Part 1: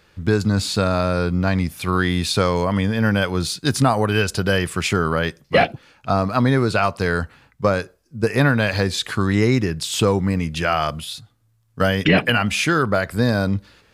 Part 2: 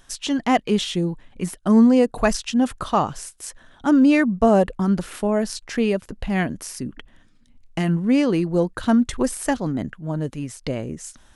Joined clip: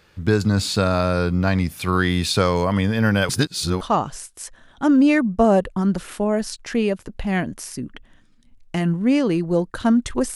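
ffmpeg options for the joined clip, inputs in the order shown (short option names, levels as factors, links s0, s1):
-filter_complex "[0:a]apad=whole_dur=10.35,atrim=end=10.35,asplit=2[s0][s1];[s0]atrim=end=3.292[s2];[s1]atrim=start=3.288:end=3.812,asetpts=PTS-STARTPTS,areverse[s3];[1:a]atrim=start=2.838:end=9.38[s4];[s2][s3]acrossfade=d=0.004:c1=hsin:c2=hsin[s5];[s5][s4]acrossfade=d=0.004:c1=hsin:c2=hsin"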